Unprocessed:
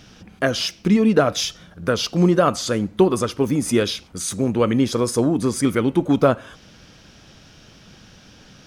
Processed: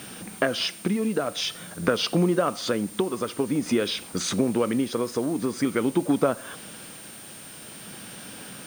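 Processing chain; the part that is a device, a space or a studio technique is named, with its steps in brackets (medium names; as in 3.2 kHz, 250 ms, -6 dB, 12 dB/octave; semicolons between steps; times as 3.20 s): medium wave at night (band-pass 180–4000 Hz; compression, threshold -26 dBFS, peak gain reduction 15 dB; tremolo 0.48 Hz, depth 40%; whistle 9 kHz -51 dBFS; white noise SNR 21 dB); trim +7 dB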